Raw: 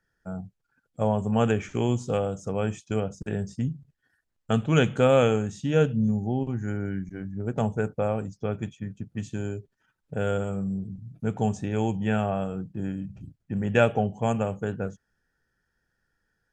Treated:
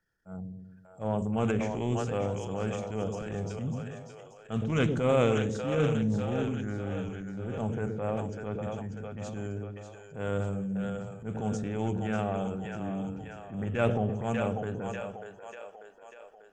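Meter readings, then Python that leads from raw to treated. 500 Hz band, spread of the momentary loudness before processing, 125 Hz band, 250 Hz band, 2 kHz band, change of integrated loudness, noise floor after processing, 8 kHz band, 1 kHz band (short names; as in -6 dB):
-4.5 dB, 13 LU, -4.0 dB, -4.0 dB, -5.0 dB, -4.5 dB, -54 dBFS, -3.5 dB, -4.5 dB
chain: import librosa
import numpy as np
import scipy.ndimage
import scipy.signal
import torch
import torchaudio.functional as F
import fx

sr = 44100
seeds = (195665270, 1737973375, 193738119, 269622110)

y = fx.echo_split(x, sr, split_hz=440.0, low_ms=118, high_ms=592, feedback_pct=52, wet_db=-7)
y = fx.transient(y, sr, attack_db=-10, sustain_db=5)
y = fx.doppler_dist(y, sr, depth_ms=0.21)
y = y * librosa.db_to_amplitude(-4.5)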